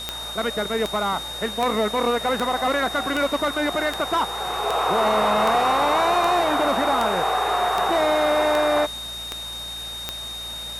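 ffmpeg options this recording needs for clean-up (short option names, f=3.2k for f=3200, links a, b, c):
-af "adeclick=t=4,bandreject=f=57.5:t=h:w=4,bandreject=f=115:t=h:w=4,bandreject=f=172.5:t=h:w=4,bandreject=f=230:t=h:w=4,bandreject=f=3.7k:w=30,afwtdn=0.01"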